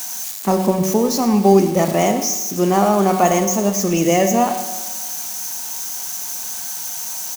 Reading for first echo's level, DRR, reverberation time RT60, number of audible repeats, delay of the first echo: −14.5 dB, 6.5 dB, 1.3 s, 1, 107 ms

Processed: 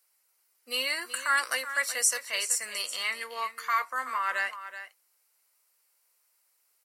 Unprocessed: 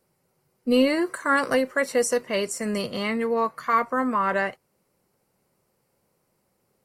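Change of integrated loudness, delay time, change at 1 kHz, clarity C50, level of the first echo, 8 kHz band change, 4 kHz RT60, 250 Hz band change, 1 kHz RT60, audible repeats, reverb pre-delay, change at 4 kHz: −4.5 dB, 377 ms, −6.0 dB, no reverb audible, −12.0 dB, +5.5 dB, no reverb audible, −30.0 dB, no reverb audible, 1, no reverb audible, +2.5 dB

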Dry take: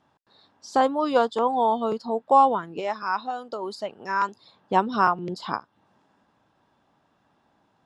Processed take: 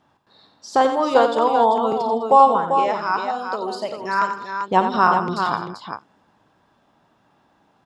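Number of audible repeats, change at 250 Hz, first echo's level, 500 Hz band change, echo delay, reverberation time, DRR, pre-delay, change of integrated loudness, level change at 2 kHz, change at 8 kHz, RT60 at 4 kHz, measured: 5, +3.5 dB, −12.5 dB, +5.5 dB, 53 ms, no reverb audible, no reverb audible, no reverb audible, +5.5 dB, +5.5 dB, can't be measured, no reverb audible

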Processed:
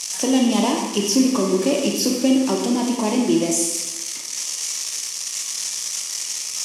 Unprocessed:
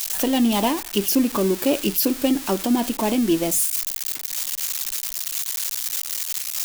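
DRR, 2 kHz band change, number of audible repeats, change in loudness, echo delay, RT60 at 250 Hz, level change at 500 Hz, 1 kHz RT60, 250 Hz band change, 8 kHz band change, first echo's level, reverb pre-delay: 0.5 dB, +0.5 dB, no echo audible, +1.0 dB, no echo audible, 1.0 s, +2.0 dB, 1.1 s, +2.5 dB, +4.0 dB, no echo audible, 17 ms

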